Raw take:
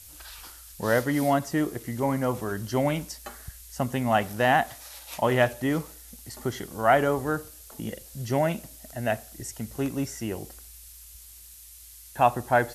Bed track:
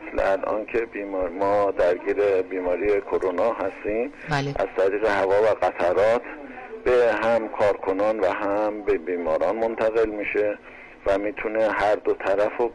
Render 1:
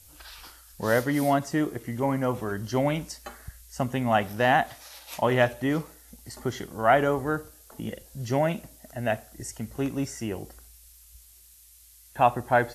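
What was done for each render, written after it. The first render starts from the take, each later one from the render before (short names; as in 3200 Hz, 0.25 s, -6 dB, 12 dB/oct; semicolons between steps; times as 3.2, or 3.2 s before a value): noise print and reduce 6 dB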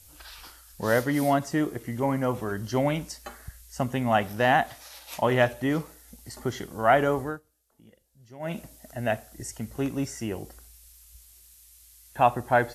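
7.21–8.58 dip -21 dB, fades 0.19 s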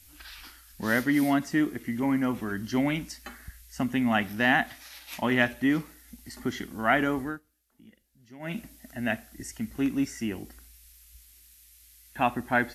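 ten-band EQ 125 Hz -8 dB, 250 Hz +8 dB, 500 Hz -10 dB, 1000 Hz -4 dB, 2000 Hz +5 dB, 8000 Hz -4 dB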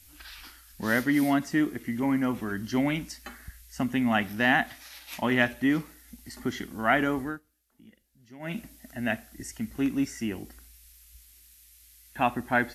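nothing audible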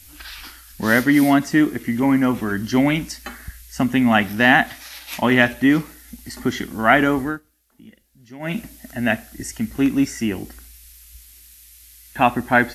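gain +9 dB; limiter -1 dBFS, peak gain reduction 1.5 dB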